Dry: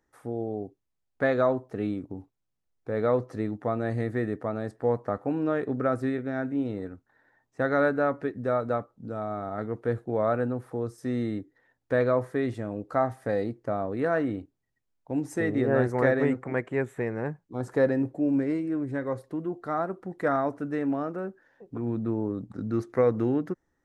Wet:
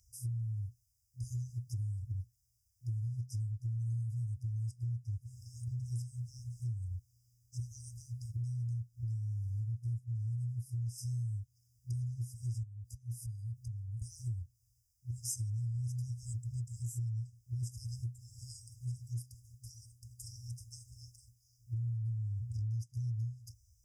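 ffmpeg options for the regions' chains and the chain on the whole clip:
ffmpeg -i in.wav -filter_complex "[0:a]asettb=1/sr,asplit=3[link_01][link_02][link_03];[link_01]atrim=end=12.634[link_04];[link_02]atrim=start=12.63:end=14.02,asetpts=PTS-STARTPTS,afade=type=in:duration=0.004:curve=qsin,afade=type=out:start_time=1.386:duration=0.004:curve=qsin,equalizer=frequency=2400:width_type=o:width=2.9:gain=-8,acompressor=threshold=-41dB:ratio=8:attack=3.2:release=140:knee=1:detection=peak[link_05];[link_03]atrim=start=14.016[link_06];[link_04][link_05]acrossfade=duration=0.004:curve1=hsin:curve2=qsin[link_07];[link_07][link_06]acrossfade=duration=0.004:curve1=qsin:curve2=hsin,highpass=45,afftfilt=real='re*(1-between(b*sr/4096,120,4800))':imag='im*(1-between(b*sr/4096,120,4800))':win_size=4096:overlap=0.75,acompressor=threshold=-51dB:ratio=8,volume=16dB" out.wav

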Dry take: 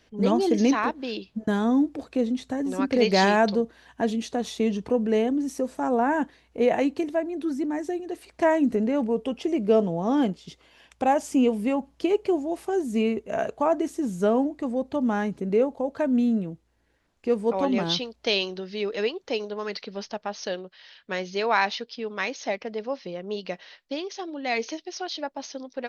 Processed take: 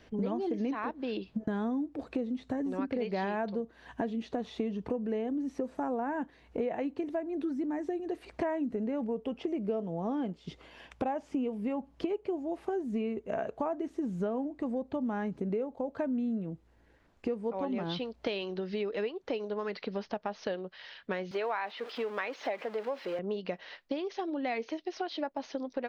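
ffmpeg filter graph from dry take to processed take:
ffmpeg -i in.wav -filter_complex "[0:a]asettb=1/sr,asplit=3[link_01][link_02][link_03];[link_01]atrim=end=21.314[link_04];[link_02]atrim=start=21.31:end=23.19,asetpts=PTS-STARTPTS,afade=type=in:duration=0.004:curve=qsin,afade=type=out:start_time=1.876:duration=0.004:curve=qsin,aeval=exprs='val(0)+0.5*0.0158*sgn(val(0))':channel_layout=same,highpass=400,acrossover=split=3700[link_05][link_06];[link_06]acompressor=threshold=-41dB:ratio=4:attack=1:release=60[link_07];[link_05][link_07]amix=inputs=2:normalize=0[link_08];[link_03]atrim=start=23.186[link_09];[link_04][link_08]acrossfade=duration=0.004:curve1=hsin:curve2=qsin[link_10];[link_10][link_09]acrossfade=duration=0.004:curve1=qsin:curve2=hsin,acrossover=split=4400[link_11][link_12];[link_12]acompressor=threshold=-57dB:ratio=4:attack=1:release=60[link_13];[link_11][link_13]amix=inputs=2:normalize=0,highshelf=frequency=3400:gain=-11,acompressor=threshold=-37dB:ratio=6,volume=5.5dB" out.wav

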